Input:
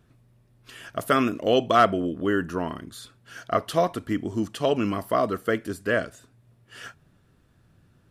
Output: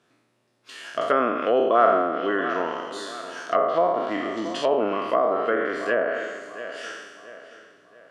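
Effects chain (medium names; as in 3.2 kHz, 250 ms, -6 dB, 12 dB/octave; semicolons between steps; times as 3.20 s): spectral sustain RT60 1.31 s; band-pass 360–7100 Hz; treble shelf 5.2 kHz +5.5 dB; filtered feedback delay 679 ms, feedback 40%, low-pass 4.8 kHz, level -14 dB; low-pass that closes with the level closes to 1.2 kHz, closed at -17 dBFS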